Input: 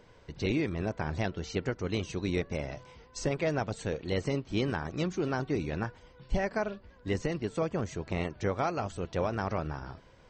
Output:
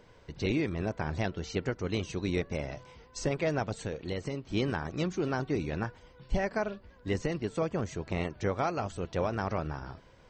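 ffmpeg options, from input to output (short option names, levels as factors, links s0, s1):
-filter_complex "[0:a]asettb=1/sr,asplit=3[s0][s1][s2];[s0]atrim=end=3.844[s3];[s1]atrim=start=3.84:end=4.44,asetpts=PTS-STARTPTS,afade=t=in:d=0.004:c=qsin,afade=t=out:st=0.596:d=0.004:c=qsin,acompressor=threshold=0.0282:ratio=6[s4];[s2]atrim=start=4.436[s5];[s3][s4]acrossfade=d=0.004:c1=hsin:c2=qsin[s6];[s6][s5]acrossfade=d=0.004:c1=qsin:c2=hsin"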